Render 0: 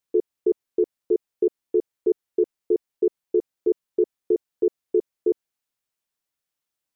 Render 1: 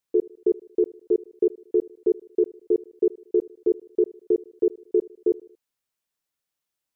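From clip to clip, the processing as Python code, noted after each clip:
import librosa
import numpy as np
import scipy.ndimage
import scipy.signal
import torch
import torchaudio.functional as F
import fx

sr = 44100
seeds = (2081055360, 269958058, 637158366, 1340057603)

y = fx.echo_feedback(x, sr, ms=77, feedback_pct=49, wet_db=-22.0)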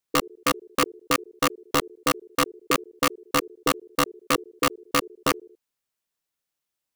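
y = (np.mod(10.0 ** (14.5 / 20.0) * x + 1.0, 2.0) - 1.0) / 10.0 ** (14.5 / 20.0)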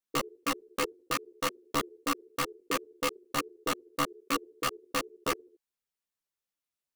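y = fx.ensemble(x, sr)
y = F.gain(torch.from_numpy(y), -4.5).numpy()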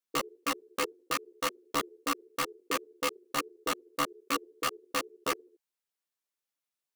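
y = fx.low_shelf(x, sr, hz=150.0, db=-11.5)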